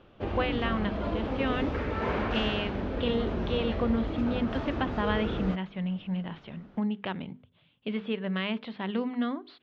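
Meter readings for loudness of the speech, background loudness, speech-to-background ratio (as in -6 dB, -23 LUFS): -32.5 LUFS, -33.0 LUFS, 0.5 dB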